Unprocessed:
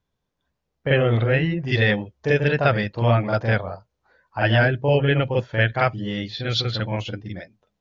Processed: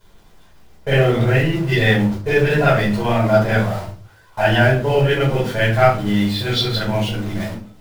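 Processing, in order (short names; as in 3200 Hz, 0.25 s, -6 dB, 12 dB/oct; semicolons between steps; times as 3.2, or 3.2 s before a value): zero-crossing step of -28.5 dBFS; gate with hold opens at -23 dBFS; shoebox room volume 250 m³, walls furnished, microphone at 5 m; gain -6.5 dB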